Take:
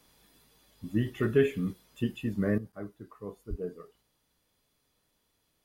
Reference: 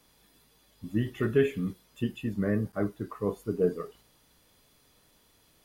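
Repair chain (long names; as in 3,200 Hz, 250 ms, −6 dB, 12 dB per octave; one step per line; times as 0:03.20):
0:03.49–0:03.61: high-pass filter 140 Hz 24 dB per octave
level 0 dB, from 0:02.58 +11 dB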